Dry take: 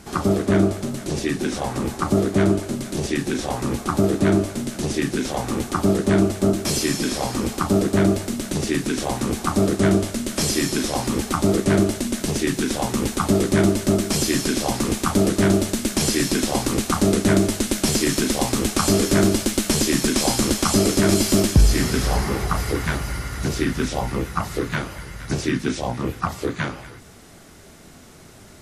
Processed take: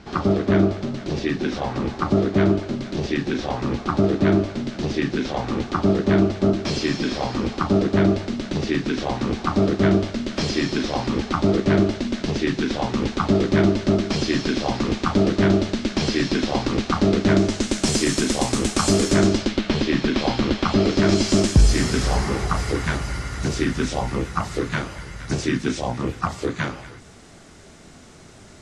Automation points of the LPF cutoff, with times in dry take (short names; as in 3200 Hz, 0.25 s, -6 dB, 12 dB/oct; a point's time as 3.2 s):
LPF 24 dB/oct
17.22 s 4900 Hz
17.94 s 8800 Hz
19.07 s 8800 Hz
19.61 s 4000 Hz
20.77 s 4000 Hz
21.56 s 8700 Hz